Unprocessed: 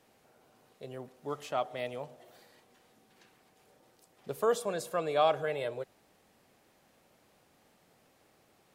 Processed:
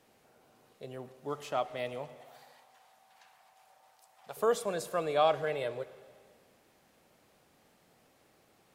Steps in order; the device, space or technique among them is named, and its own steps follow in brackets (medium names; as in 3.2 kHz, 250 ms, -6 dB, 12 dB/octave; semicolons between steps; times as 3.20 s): 2.21–4.37 s: resonant low shelf 530 Hz -12.5 dB, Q 3; saturated reverb return (on a send at -12.5 dB: reverberation RT60 1.6 s, pre-delay 52 ms + saturation -35.5 dBFS, distortion -6 dB)